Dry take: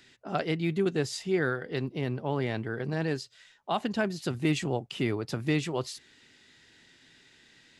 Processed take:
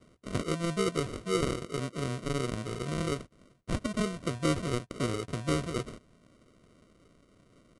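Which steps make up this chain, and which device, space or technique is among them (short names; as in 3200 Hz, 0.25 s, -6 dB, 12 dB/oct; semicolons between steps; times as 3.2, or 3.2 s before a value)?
crushed at another speed (playback speed 2×; sample-and-hold 26×; playback speed 0.5×); gain -2 dB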